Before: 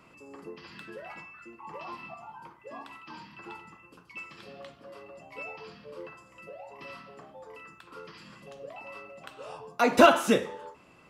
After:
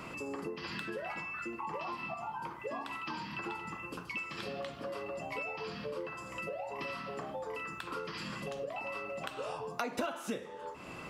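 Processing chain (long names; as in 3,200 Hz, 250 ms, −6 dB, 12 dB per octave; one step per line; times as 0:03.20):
downward compressor 6 to 1, threshold −49 dBFS, peak gain reduction 32.5 dB
level +12 dB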